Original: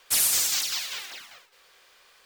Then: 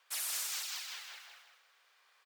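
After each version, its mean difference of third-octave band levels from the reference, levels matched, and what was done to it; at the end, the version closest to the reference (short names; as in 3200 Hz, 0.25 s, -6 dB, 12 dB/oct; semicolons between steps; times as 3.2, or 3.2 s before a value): 4.5 dB: HPF 940 Hz 12 dB/oct; high shelf 2100 Hz -10 dB; on a send: feedback echo 0.16 s, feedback 36%, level -4 dB; on the sum: gain -6.5 dB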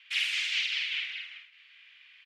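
12.0 dB: Butterworth band-pass 2500 Hz, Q 2.1; doubler 47 ms -3.5 dB; gain +6 dB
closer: first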